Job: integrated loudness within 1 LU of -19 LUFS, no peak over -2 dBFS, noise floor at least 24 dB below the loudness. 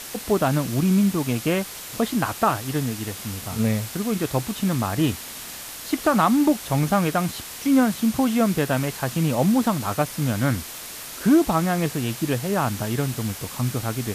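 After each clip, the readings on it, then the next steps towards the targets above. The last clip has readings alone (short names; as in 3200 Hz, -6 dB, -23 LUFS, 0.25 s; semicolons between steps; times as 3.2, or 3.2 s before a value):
noise floor -37 dBFS; noise floor target -47 dBFS; loudness -23.0 LUFS; peak -7.0 dBFS; loudness target -19.0 LUFS
-> noise print and reduce 10 dB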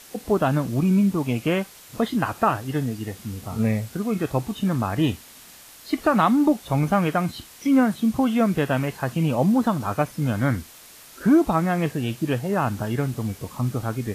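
noise floor -47 dBFS; loudness -23.0 LUFS; peak -7.5 dBFS; loudness target -19.0 LUFS
-> gain +4 dB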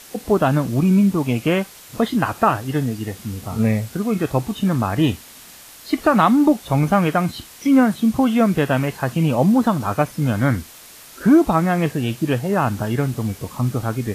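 loudness -19.0 LUFS; peak -3.5 dBFS; noise floor -43 dBFS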